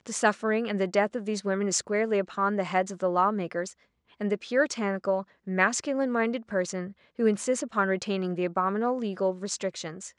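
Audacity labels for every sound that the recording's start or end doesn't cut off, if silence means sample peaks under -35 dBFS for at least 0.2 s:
4.210000	5.220000	sound
5.470000	6.880000	sound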